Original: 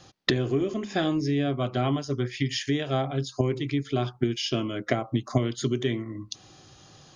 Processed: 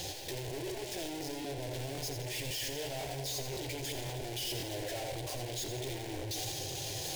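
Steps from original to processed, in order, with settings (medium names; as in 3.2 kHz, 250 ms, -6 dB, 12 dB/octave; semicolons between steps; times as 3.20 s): gate with hold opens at -40 dBFS; power-law waveshaper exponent 0.35; chorus voices 2, 0.45 Hz, delay 12 ms, depth 4.7 ms; hard clipper -36 dBFS, distortion -3 dB; static phaser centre 510 Hz, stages 4; two-band feedback delay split 550 Hz, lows 224 ms, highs 85 ms, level -7.5 dB; crackling interface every 0.53 s, samples 1024, repeat, from 0.87 s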